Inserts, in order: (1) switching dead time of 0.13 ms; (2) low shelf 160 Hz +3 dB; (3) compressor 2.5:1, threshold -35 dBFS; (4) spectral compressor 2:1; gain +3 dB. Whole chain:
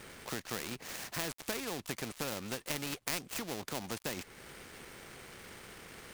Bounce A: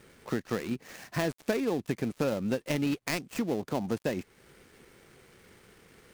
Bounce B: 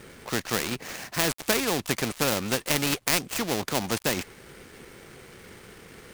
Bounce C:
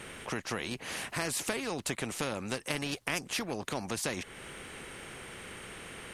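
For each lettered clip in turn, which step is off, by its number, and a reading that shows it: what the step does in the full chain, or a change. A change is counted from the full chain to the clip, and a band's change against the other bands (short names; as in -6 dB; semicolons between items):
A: 4, 8 kHz band -11.5 dB; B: 3, mean gain reduction 9.0 dB; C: 1, distortion -12 dB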